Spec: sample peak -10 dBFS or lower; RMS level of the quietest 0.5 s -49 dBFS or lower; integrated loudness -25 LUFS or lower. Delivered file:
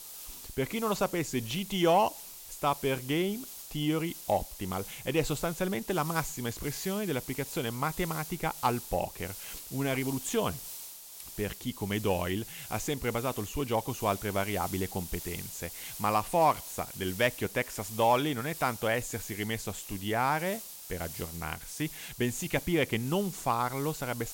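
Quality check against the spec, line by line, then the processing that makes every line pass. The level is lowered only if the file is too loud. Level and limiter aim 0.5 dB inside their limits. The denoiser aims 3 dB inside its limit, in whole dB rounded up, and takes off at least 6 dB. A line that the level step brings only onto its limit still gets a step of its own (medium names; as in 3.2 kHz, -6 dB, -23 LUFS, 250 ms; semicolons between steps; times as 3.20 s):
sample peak -13.5 dBFS: pass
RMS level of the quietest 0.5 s -46 dBFS: fail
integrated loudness -31.5 LUFS: pass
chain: noise reduction 6 dB, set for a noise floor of -46 dBFS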